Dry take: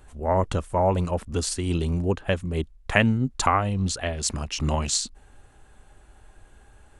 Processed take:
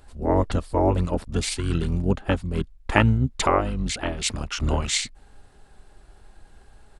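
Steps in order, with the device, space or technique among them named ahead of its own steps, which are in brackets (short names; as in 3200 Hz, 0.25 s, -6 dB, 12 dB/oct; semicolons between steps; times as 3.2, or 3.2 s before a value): octave pedal (harmoniser -12 st -1 dB); gain -1.5 dB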